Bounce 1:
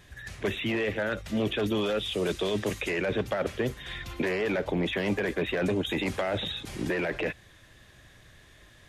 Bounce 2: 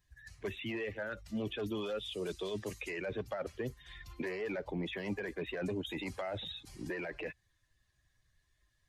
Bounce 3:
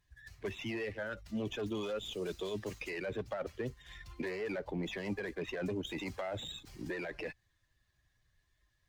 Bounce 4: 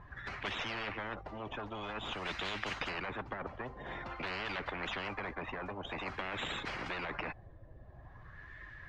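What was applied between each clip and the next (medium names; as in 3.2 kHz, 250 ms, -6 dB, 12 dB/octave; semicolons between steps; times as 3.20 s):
expander on every frequency bin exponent 1.5; trim -7 dB
sliding maximum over 3 samples
LFO low-pass sine 0.49 Hz 580–1800 Hz; spectrum-flattening compressor 10:1; trim +3 dB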